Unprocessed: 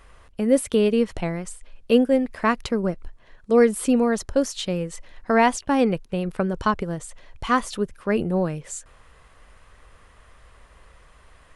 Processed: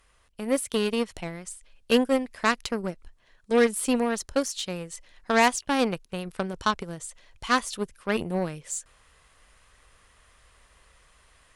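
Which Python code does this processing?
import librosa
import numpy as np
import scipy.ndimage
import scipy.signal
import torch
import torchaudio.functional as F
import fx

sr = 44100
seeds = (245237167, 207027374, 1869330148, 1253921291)

y = fx.cheby_harmonics(x, sr, harmonics=(7, 8), levels_db=(-23, -36), full_scale_db=-5.5)
y = fx.high_shelf(y, sr, hz=2300.0, db=11.5)
y = fx.rider(y, sr, range_db=3, speed_s=2.0)
y = y * librosa.db_to_amplitude(-6.0)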